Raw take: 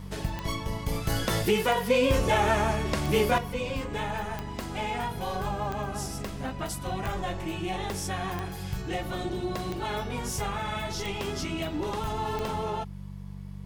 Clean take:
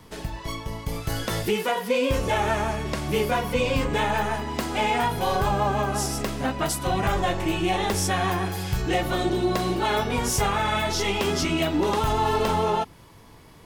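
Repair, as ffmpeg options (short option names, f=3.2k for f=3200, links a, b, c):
-af "adeclick=t=4,bandreject=f=48.1:t=h:w=4,bandreject=f=96.2:t=h:w=4,bandreject=f=144.3:t=h:w=4,bandreject=f=192.4:t=h:w=4,asetnsamples=n=441:p=0,asendcmd='3.38 volume volume 8.5dB',volume=0dB"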